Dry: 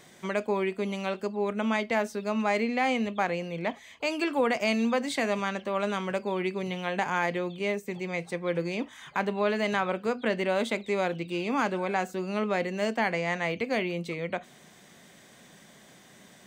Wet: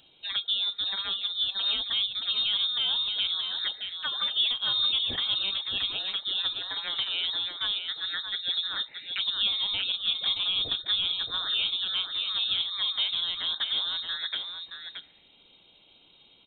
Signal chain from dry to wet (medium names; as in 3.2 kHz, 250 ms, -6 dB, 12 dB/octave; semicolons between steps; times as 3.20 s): touch-sensitive phaser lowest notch 320 Hz, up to 2.1 kHz, full sweep at -24.5 dBFS; frequency inversion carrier 3.9 kHz; delay 624 ms -6.5 dB